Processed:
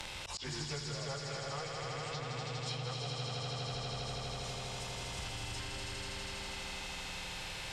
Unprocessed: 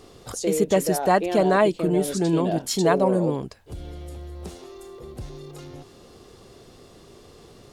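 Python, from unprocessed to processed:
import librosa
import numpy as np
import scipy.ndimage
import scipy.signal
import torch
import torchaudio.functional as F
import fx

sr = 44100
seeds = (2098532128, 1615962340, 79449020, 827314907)

p1 = fx.pitch_bins(x, sr, semitones=-5.0)
p2 = 10.0 ** (-24.0 / 20.0) * np.tanh(p1 / 10.0 ** (-24.0 / 20.0))
p3 = p1 + F.gain(torch.from_numpy(p2), -6.0).numpy()
p4 = fx.env_lowpass_down(p3, sr, base_hz=2200.0, full_db=-17.5)
p5 = fx.low_shelf(p4, sr, hz=180.0, db=-4.5)
p6 = fx.notch(p5, sr, hz=6400.0, q=21.0)
p7 = p6 + fx.echo_swell(p6, sr, ms=81, loudest=5, wet_db=-5.0, dry=0)
p8 = fx.rider(p7, sr, range_db=5, speed_s=0.5)
p9 = fx.tone_stack(p8, sr, knobs='10-0-10')
p10 = fx.auto_swell(p9, sr, attack_ms=202.0)
p11 = fx.band_squash(p10, sr, depth_pct=100)
y = F.gain(torch.from_numpy(p11), -7.0).numpy()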